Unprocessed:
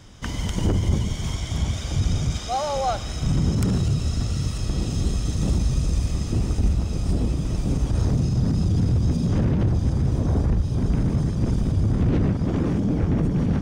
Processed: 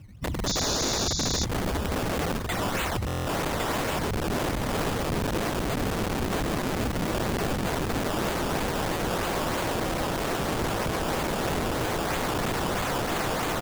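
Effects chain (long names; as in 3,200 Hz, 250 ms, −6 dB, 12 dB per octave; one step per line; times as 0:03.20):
expanding power law on the bin magnitudes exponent 2
high-pass filter 100 Hz 6 dB per octave
in parallel at −2 dB: brickwall limiter −24.5 dBFS, peak gain reduction 10.5 dB
on the sum: sample-and-hold swept by an LFO 15×, swing 100% 3.1 Hz
wrap-around overflow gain 23 dB
on a send: single-tap delay 1,106 ms −4.5 dB
on the sum: sound drawn into the spectrogram noise, 0:00.46–0:01.45, 3,400–7,200 Hz −29 dBFS
buffer that repeats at 0:03.06, samples 1,024, times 8
level −1 dB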